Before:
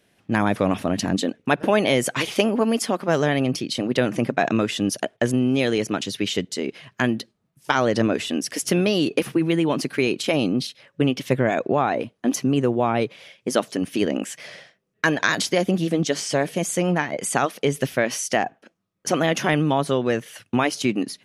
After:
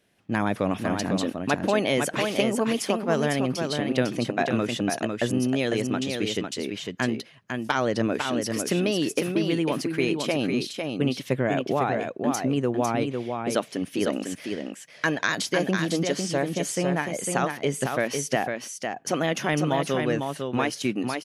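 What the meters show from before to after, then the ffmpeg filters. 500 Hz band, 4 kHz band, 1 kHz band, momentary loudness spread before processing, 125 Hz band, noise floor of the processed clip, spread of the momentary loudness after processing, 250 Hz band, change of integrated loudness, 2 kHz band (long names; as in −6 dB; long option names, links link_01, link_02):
−3.5 dB, −3.5 dB, −3.5 dB, 6 LU, −3.5 dB, −49 dBFS, 5 LU, −3.5 dB, −3.5 dB, −3.5 dB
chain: -af "aecho=1:1:502:0.562,volume=-4.5dB"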